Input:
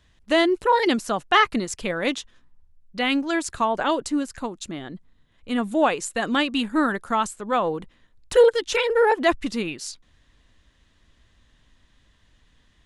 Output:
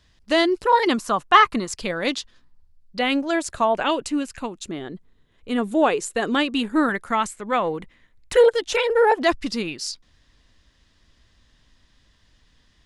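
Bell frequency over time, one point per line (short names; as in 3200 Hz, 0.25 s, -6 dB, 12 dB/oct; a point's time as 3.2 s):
bell +9 dB 0.42 oct
4900 Hz
from 0.73 s 1100 Hz
from 1.73 s 4600 Hz
from 2.99 s 600 Hz
from 3.75 s 2600 Hz
from 4.58 s 410 Hz
from 6.89 s 2100 Hz
from 8.46 s 680 Hz
from 9.22 s 5000 Hz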